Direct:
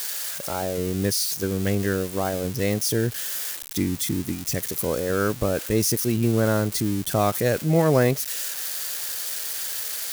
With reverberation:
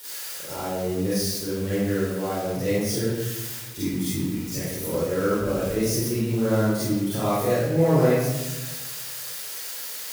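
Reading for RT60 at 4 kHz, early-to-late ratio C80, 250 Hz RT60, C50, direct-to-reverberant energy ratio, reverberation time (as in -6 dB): 0.70 s, 0.0 dB, 1.4 s, -6.0 dB, -11.0 dB, 1.2 s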